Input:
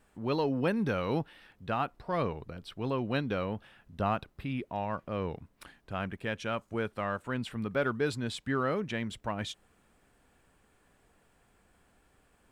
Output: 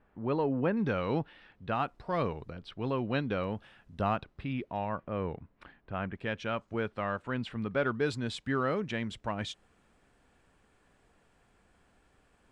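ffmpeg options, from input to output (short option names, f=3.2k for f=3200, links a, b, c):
-af "asetnsamples=n=441:p=0,asendcmd='0.77 lowpass f 3900;1.75 lowpass f 8000;2.52 lowpass f 4400;3.44 lowpass f 8300;4.16 lowpass f 4600;4.89 lowpass f 2400;6.15 lowpass f 4600;8.01 lowpass f 7600',lowpass=1.9k"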